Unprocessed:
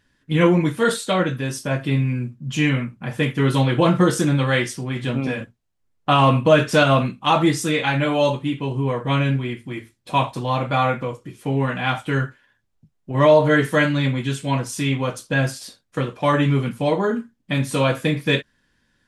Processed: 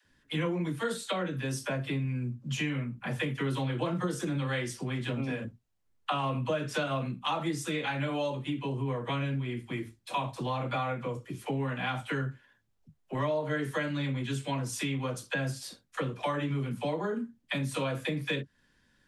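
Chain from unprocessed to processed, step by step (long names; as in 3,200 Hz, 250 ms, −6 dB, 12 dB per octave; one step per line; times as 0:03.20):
all-pass dispersion lows, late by 56 ms, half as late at 390 Hz
downward compressor 4 to 1, threshold −28 dBFS, peak gain reduction 16 dB
level −2.5 dB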